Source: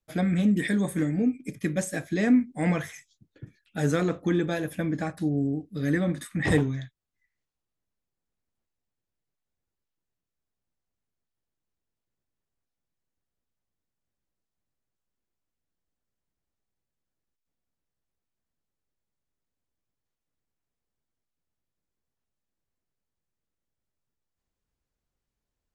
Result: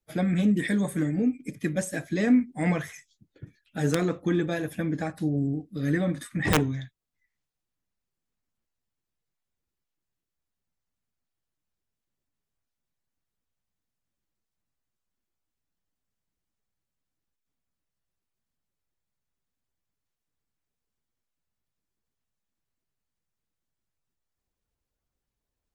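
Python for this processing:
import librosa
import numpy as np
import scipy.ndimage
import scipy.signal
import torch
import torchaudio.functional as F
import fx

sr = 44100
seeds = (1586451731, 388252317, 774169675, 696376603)

y = fx.spec_quant(x, sr, step_db=15)
y = (np.mod(10.0 ** (12.0 / 20.0) * y + 1.0, 2.0) - 1.0) / 10.0 ** (12.0 / 20.0)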